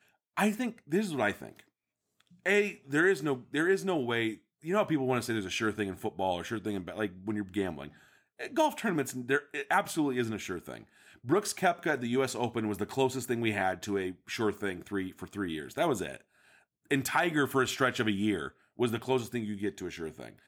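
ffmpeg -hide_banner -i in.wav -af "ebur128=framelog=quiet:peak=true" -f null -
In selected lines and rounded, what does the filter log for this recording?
Integrated loudness:
  I:         -31.4 LUFS
  Threshold: -41.9 LUFS
Loudness range:
  LRA:         3.7 LU
  Threshold: -51.8 LUFS
  LRA low:   -33.9 LUFS
  LRA high:  -30.2 LUFS
True peak:
  Peak:      -13.0 dBFS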